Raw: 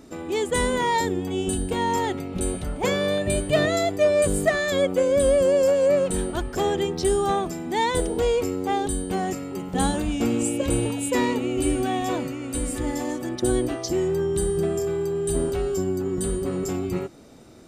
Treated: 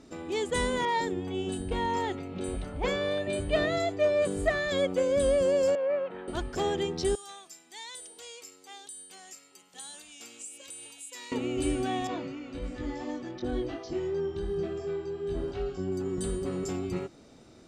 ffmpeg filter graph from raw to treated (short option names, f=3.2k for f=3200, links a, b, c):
-filter_complex "[0:a]asettb=1/sr,asplit=3[a][b][c];[a]atrim=end=0.854[d];[b]atrim=start=0.85:end=4.71,asetpts=PTS-STARTPTS,afade=t=in:d=0.004:c=qsin,afade=t=out:st=3.856:d=0.004:c=qsin,highshelf=f=6.9k:g=-8.5,acrossover=split=150|5700[e][f][g];[g]adelay=30[h];[e]adelay=120[i];[i][f][h]amix=inputs=3:normalize=0,atrim=end_sample=170226[j];[c]atrim=start=4.706[k];[d][j]acrossfade=d=0.004:c1=hsin:c2=qsin[l];[l][k]acrossfade=d=0.004:c1=qsin:c2=hsin,asettb=1/sr,asplit=3[m][n][o];[m]atrim=end=5.754[p];[n]atrim=start=5.75:end=6.28,asetpts=PTS-STARTPTS,afade=t=in:d=0.004:c=qsin,afade=t=out:st=0.526:d=0.004:c=qsin,acrossover=split=3000[q][r];[r]acompressor=threshold=-41dB:ratio=4:attack=1:release=60[s];[q][s]amix=inputs=2:normalize=0,highpass=150,lowpass=4.1k,acrossover=split=500 2700:gain=0.2 1 0.0794[t][u][v];[t][u][v]amix=inputs=3:normalize=0[w];[o]atrim=start=6.276[x];[p][w]acrossfade=d=0.004:c1=hsin:c2=qsin[y];[y][x]acrossfade=d=0.004:c1=qsin:c2=hsin,asettb=1/sr,asplit=3[z][aa][ab];[z]atrim=end=7.154[ac];[aa]atrim=start=7.15:end=11.32,asetpts=PTS-STARTPTS,afade=t=in:d=0.004:c=qsin,afade=t=out:st=4.166:d=0.004:c=qsin,aderivative,acompressor=threshold=-33dB:ratio=2.5:attack=3.2:release=140:knee=1:detection=peak[ad];[ab]atrim=start=11.316[ae];[ac][ad]acrossfade=d=0.004:c1=hsin:c2=qsin[af];[af][ae]acrossfade=d=0.004:c1=qsin:c2=hsin,asettb=1/sr,asplit=3[ag][ah][ai];[ag]atrim=end=12.074[aj];[ah]atrim=start=12.07:end=15.92,asetpts=PTS-STARTPTS,afade=t=in:d=0.004:c=qsin,afade=t=out:st=3.846:d=0.004:c=qsin,acrossover=split=3200[ak][al];[al]acompressor=threshold=-40dB:ratio=4:attack=1:release=60[am];[ak][am]amix=inputs=2:normalize=0,lowpass=f=6k:w=0.5412,lowpass=f=6k:w=1.3066,flanger=delay=20:depth=2.1:speed=2.8[an];[ai]atrim=start=15.916[ao];[aj][an]acrossfade=d=0.004:c1=hsin:c2=qsin[ap];[ap][ao]acrossfade=d=0.004:c1=qsin:c2=hsin,lowpass=5.4k,aemphasis=mode=production:type=cd,volume=-5.5dB"